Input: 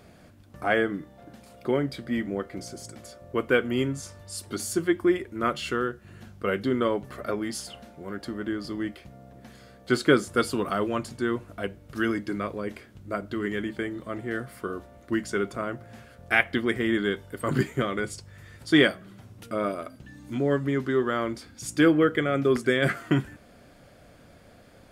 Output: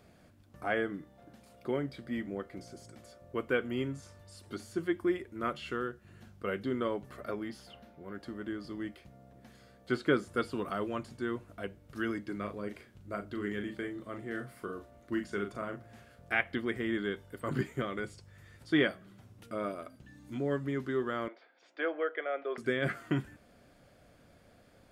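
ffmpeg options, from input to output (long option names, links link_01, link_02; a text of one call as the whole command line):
ffmpeg -i in.wav -filter_complex "[0:a]asettb=1/sr,asplit=3[link_01][link_02][link_03];[link_01]atrim=end=7.434[link_04];[link_02]atrim=start=7.43:end=8.15,asetpts=PTS-STARTPTS,afade=type=in:duration=0.004:curve=qsin,afade=type=out:start_time=0.716:duration=0.004:curve=qsin,equalizer=frequency=8100:width_type=o:width=1.1:gain=-9[link_05];[link_03]atrim=start=8.146[link_06];[link_04][link_05]acrossfade=duration=0.004:curve1=hsin:curve2=qsin[link_07];[link_07][link_06]acrossfade=duration=0.004:curve1=qsin:curve2=hsin,asettb=1/sr,asplit=3[link_08][link_09][link_10];[link_08]atrim=end=12.364[link_11];[link_09]atrim=start=12.36:end=16.34,asetpts=PTS-STARTPTS,afade=type=in:duration=0.004:curve=qsin,afade=type=out:start_time=3.976:duration=0.004:curve=qsin,asplit=2[link_12][link_13];[link_13]adelay=39,volume=-7.5dB[link_14];[link_12][link_14]amix=inputs=2:normalize=0,atrim=end_sample=175518[link_15];[link_10]atrim=start=16.336[link_16];[link_11][link_15]acrossfade=duration=0.004:curve1=hsin:curve2=qsin[link_17];[link_17][link_16]acrossfade=duration=0.004:curve1=qsin:curve2=hsin,asettb=1/sr,asplit=3[link_18][link_19][link_20];[link_18]atrim=end=21.284[link_21];[link_19]atrim=start=21.28:end=22.58,asetpts=PTS-STARTPTS,afade=type=in:duration=0.004:curve=qsin,afade=type=out:start_time=1.296:duration=0.004:curve=qsin,highpass=frequency=470:width=0.5412,highpass=frequency=470:width=1.3066,equalizer=frequency=660:width_type=q:width=4:gain=6,equalizer=frequency=1200:width_type=q:width=4:gain=-3,equalizer=frequency=2700:width_type=q:width=4:gain=-4,lowpass=frequency=3000:width=0.5412,lowpass=frequency=3000:width=1.3066[link_22];[link_20]atrim=start=22.576[link_23];[link_21][link_22]acrossfade=duration=0.004:curve1=hsin:curve2=qsin[link_24];[link_24][link_23]acrossfade=duration=0.004:curve1=qsin:curve2=hsin,acrossover=split=3700[link_25][link_26];[link_26]acompressor=threshold=-48dB:ratio=4:attack=1:release=60[link_27];[link_25][link_27]amix=inputs=2:normalize=0,volume=-8dB" out.wav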